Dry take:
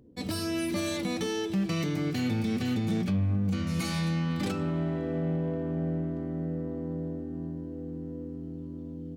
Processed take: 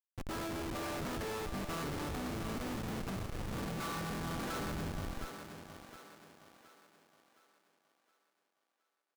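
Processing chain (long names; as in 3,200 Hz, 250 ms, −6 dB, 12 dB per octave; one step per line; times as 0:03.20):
sub-octave generator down 2 octaves, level −2 dB
dynamic equaliser 100 Hz, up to +3 dB, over −37 dBFS, Q 0.71
pitch-shifted copies added +4 semitones −9 dB
band-pass filter sweep 1,200 Hz → 3,900 Hz, 0:04.34–0:05.83
comparator with hysteresis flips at −43.5 dBFS
feedback echo with a high-pass in the loop 717 ms, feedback 45%, high-pass 250 Hz, level −7 dB
level +8.5 dB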